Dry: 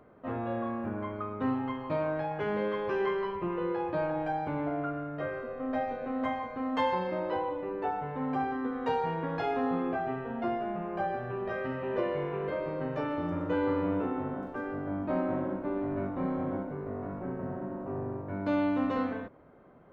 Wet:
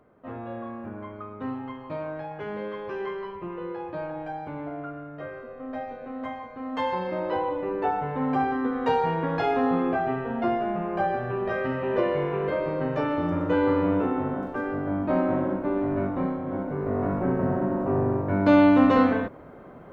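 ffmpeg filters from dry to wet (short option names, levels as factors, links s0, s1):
-af "volume=8.41,afade=t=in:st=6.56:d=1.13:silence=0.354813,afade=t=out:st=16.16:d=0.26:silence=0.446684,afade=t=in:st=16.42:d=0.62:silence=0.251189"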